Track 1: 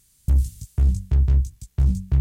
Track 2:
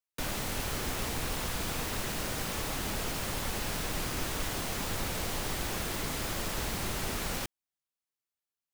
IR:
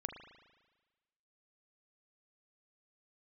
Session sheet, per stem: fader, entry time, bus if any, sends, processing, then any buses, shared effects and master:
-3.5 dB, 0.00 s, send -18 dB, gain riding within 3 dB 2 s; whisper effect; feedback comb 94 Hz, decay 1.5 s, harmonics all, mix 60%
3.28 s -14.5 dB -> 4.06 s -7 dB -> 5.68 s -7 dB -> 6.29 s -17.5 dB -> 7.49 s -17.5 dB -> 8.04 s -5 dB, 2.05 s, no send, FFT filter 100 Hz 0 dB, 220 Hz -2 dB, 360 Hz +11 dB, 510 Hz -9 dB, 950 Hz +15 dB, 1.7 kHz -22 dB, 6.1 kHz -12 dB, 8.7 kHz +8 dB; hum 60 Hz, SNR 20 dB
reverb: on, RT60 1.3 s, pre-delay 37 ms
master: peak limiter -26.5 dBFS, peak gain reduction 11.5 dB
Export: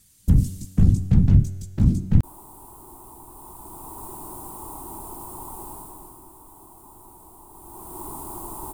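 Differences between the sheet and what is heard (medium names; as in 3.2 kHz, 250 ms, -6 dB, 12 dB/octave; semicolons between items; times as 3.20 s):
stem 1 -3.5 dB -> +8.5 dB; master: missing peak limiter -26.5 dBFS, peak gain reduction 11.5 dB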